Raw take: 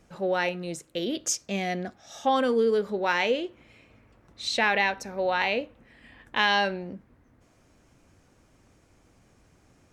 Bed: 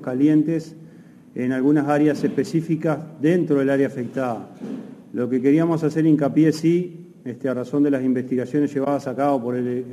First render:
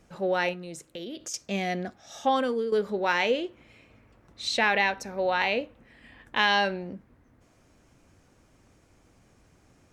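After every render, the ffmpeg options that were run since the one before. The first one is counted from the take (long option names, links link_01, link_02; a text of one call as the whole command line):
ffmpeg -i in.wav -filter_complex "[0:a]asettb=1/sr,asplit=3[link_01][link_02][link_03];[link_01]atrim=end=0.534[link_04];[link_02]atrim=start=0.53:end=1.34,asetpts=PTS-STARTPTS,afade=type=in:duration=0.004:curve=qsin,afade=type=out:start_time=0.806:duration=0.004:curve=qsin,acompressor=threshold=-37dB:ratio=3:attack=3.2:release=140:knee=1:detection=peak[link_05];[link_03]atrim=start=1.336[link_06];[link_04][link_05]acrossfade=duration=0.004:curve1=hsin:curve2=qsin[link_07];[link_07][link_06]acrossfade=duration=0.004:curve1=qsin:curve2=hsin,asplit=2[link_08][link_09];[link_08]atrim=end=2.72,asetpts=PTS-STARTPTS,afade=type=out:start_time=2.27:duration=0.45:silence=0.334965[link_10];[link_09]atrim=start=2.72,asetpts=PTS-STARTPTS,afade=type=in:duration=0.004:curve=hsin:silence=0.334965[link_11];[link_10][link_11]concat=n=2:v=0:a=1" out.wav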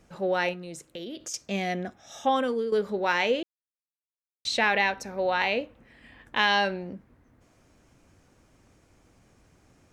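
ffmpeg -i in.wav -filter_complex "[0:a]asettb=1/sr,asplit=3[link_01][link_02][link_03];[link_01]atrim=end=1.724[link_04];[link_02]atrim=start=1.72:end=2.48,asetpts=PTS-STARTPTS,afade=type=in:duration=0.004:curve=qsin,afade=type=out:start_time=0.756:duration=0.004:curve=qsin,asuperstop=centerf=4500:order=4:qfactor=5.1[link_05];[link_03]atrim=start=2.476[link_06];[link_04][link_05]acrossfade=duration=0.004:curve1=hsin:curve2=qsin[link_07];[link_07][link_06]acrossfade=duration=0.004:curve1=qsin:curve2=hsin,asplit=3[link_08][link_09][link_10];[link_08]atrim=end=3.43,asetpts=PTS-STARTPTS,afade=type=out:start_time=3.426:duration=0.004:curve=hsin[link_11];[link_09]atrim=start=3.43:end=4.45,asetpts=PTS-STARTPTS,volume=0[link_12];[link_10]atrim=start=4.45,asetpts=PTS-STARTPTS,afade=type=in:duration=0.004:curve=hsin[link_13];[link_11][link_12][link_13]concat=n=3:v=0:a=1" out.wav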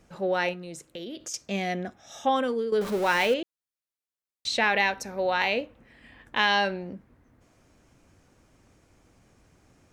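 ffmpeg -i in.wav -filter_complex "[0:a]asettb=1/sr,asplit=3[link_01][link_02][link_03];[link_01]atrim=end=2.814[link_04];[link_02]atrim=start=2.81:end=3.34,asetpts=PTS-STARTPTS,afade=type=in:duration=0.004:curve=qsin,afade=type=out:start_time=0.526:duration=0.004:curve=qsin,aeval=exprs='val(0)+0.5*0.0282*sgn(val(0))':channel_layout=same[link_05];[link_03]atrim=start=3.336[link_06];[link_04][link_05]acrossfade=duration=0.004:curve1=hsin:curve2=qsin[link_07];[link_07][link_06]acrossfade=duration=0.004:curve1=qsin:curve2=hsin,asettb=1/sr,asplit=3[link_08][link_09][link_10];[link_08]atrim=end=4.764[link_11];[link_09]atrim=start=4.76:end=5.61,asetpts=PTS-STARTPTS,afade=type=in:duration=0.004:curve=qsin,afade=type=out:start_time=0.846:duration=0.004:curve=qsin,highshelf=frequency=6100:gain=6[link_12];[link_10]atrim=start=5.606[link_13];[link_11][link_12]acrossfade=duration=0.004:curve1=hsin:curve2=qsin[link_14];[link_14][link_13]acrossfade=duration=0.004:curve1=qsin:curve2=hsin" out.wav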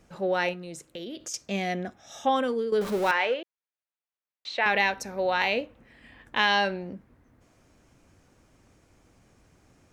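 ffmpeg -i in.wav -filter_complex "[0:a]asettb=1/sr,asplit=3[link_01][link_02][link_03];[link_01]atrim=end=3.114[link_04];[link_02]atrim=start=3.11:end=4.66,asetpts=PTS-STARTPTS,afade=type=in:duration=0.004:curve=qsin,afade=type=out:start_time=1.546:duration=0.004:curve=qsin,highpass=500,lowpass=2800[link_05];[link_03]atrim=start=4.656[link_06];[link_04][link_05]acrossfade=duration=0.004:curve1=hsin:curve2=qsin[link_07];[link_07][link_06]acrossfade=duration=0.004:curve1=qsin:curve2=hsin" out.wav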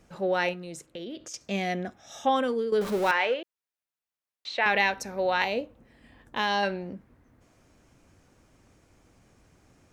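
ffmpeg -i in.wav -filter_complex "[0:a]asettb=1/sr,asplit=3[link_01][link_02][link_03];[link_01]atrim=end=0.864[link_04];[link_02]atrim=start=0.86:end=1.41,asetpts=PTS-STARTPTS,afade=type=in:duration=0.004:curve=qsin,afade=type=out:start_time=0.546:duration=0.004:curve=qsin,lowpass=frequency=3800:poles=1[link_05];[link_03]atrim=start=1.406[link_06];[link_04][link_05]acrossfade=duration=0.004:curve1=hsin:curve2=qsin[link_07];[link_07][link_06]acrossfade=duration=0.004:curve1=qsin:curve2=hsin,asettb=1/sr,asplit=3[link_08][link_09][link_10];[link_08]atrim=end=5.444[link_11];[link_09]atrim=start=5.44:end=6.63,asetpts=PTS-STARTPTS,afade=type=in:duration=0.004:curve=qsin,afade=type=out:start_time=1.186:duration=0.004:curve=qsin,equalizer=frequency=2200:width_type=o:width=1.7:gain=-8[link_12];[link_10]atrim=start=6.626[link_13];[link_11][link_12]acrossfade=duration=0.004:curve1=hsin:curve2=qsin[link_14];[link_14][link_13]acrossfade=duration=0.004:curve1=qsin:curve2=hsin" out.wav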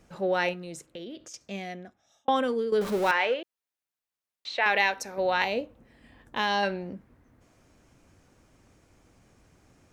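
ffmpeg -i in.wav -filter_complex "[0:a]asettb=1/sr,asplit=3[link_01][link_02][link_03];[link_01]atrim=end=4.574[link_04];[link_02]atrim=start=4.57:end=5.18,asetpts=PTS-STARTPTS,afade=type=in:duration=0.004:curve=qsin,afade=type=out:start_time=0.606:duration=0.004:curve=qsin,bass=frequency=250:gain=-10,treble=frequency=4000:gain=1[link_05];[link_03]atrim=start=5.176[link_06];[link_04][link_05]acrossfade=duration=0.004:curve1=hsin:curve2=qsin[link_07];[link_07][link_06]acrossfade=duration=0.004:curve1=qsin:curve2=hsin,asplit=2[link_08][link_09];[link_08]atrim=end=2.28,asetpts=PTS-STARTPTS,afade=type=out:start_time=0.72:duration=1.56[link_10];[link_09]atrim=start=2.28,asetpts=PTS-STARTPTS,afade=type=in:duration=0.004:curve=hsin[link_11];[link_10][link_11]concat=n=2:v=0:a=1" out.wav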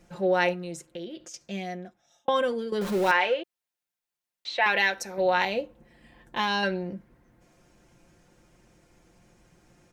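ffmpeg -i in.wav -af "bandreject=frequency=1200:width=17,aecho=1:1:5.7:0.57" out.wav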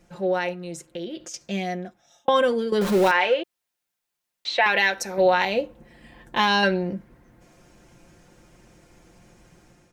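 ffmpeg -i in.wav -af "alimiter=limit=-15dB:level=0:latency=1:release=241,dynaudnorm=framelen=600:gausssize=3:maxgain=6.5dB" out.wav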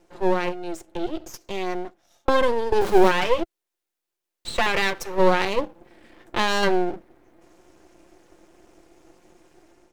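ffmpeg -i in.wav -af "highpass=frequency=340:width_type=q:width=3.8,aeval=exprs='max(val(0),0)':channel_layout=same" out.wav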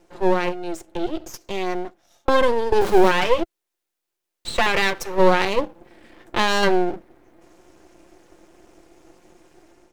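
ffmpeg -i in.wav -af "volume=2.5dB,alimiter=limit=-3dB:level=0:latency=1" out.wav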